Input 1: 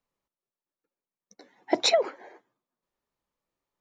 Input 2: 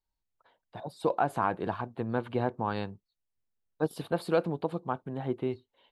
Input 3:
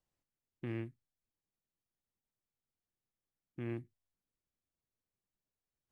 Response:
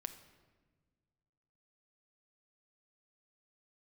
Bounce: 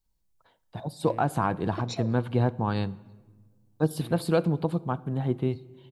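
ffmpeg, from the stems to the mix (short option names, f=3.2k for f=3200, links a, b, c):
-filter_complex "[0:a]lowshelf=f=410:g=11.5,adelay=50,volume=-14dB,asplit=2[a][b];[b]volume=-10dB[c];[1:a]volume=-2.5dB,asplit=3[d][e][f];[e]volume=-3.5dB[g];[2:a]adelay=400,volume=-9dB[h];[f]apad=whole_len=169967[i];[a][i]sidechaincompress=threshold=-40dB:ratio=8:attack=16:release=590[j];[3:a]atrim=start_sample=2205[k];[c][g]amix=inputs=2:normalize=0[l];[l][k]afir=irnorm=-1:irlink=0[m];[j][d][h][m]amix=inputs=4:normalize=0,bass=f=250:g=10,treble=f=4k:g=8"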